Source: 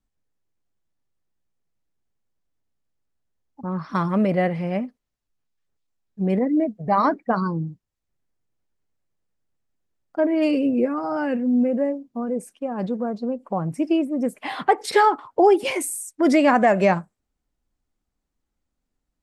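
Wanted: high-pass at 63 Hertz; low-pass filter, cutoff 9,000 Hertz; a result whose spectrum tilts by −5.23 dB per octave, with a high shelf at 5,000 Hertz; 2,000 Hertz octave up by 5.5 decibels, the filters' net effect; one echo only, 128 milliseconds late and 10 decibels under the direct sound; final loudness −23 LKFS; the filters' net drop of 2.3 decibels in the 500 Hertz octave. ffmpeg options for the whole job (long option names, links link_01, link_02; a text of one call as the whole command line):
ffmpeg -i in.wav -af "highpass=63,lowpass=9000,equalizer=frequency=500:width_type=o:gain=-3.5,equalizer=frequency=2000:width_type=o:gain=6.5,highshelf=frequency=5000:gain=4,aecho=1:1:128:0.316,volume=-1dB" out.wav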